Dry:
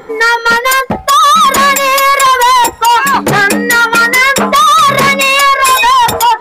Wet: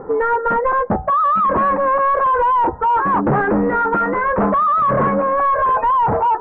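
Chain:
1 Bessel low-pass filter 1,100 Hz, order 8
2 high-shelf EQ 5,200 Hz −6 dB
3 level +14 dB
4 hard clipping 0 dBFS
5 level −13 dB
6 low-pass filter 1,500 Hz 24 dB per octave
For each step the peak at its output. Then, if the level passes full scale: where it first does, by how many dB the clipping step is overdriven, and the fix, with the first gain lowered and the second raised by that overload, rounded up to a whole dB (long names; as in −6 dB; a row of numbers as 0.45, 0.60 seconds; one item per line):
−4.5, −4.5, +9.5, 0.0, −13.0, −11.0 dBFS
step 3, 9.5 dB
step 3 +4 dB, step 5 −3 dB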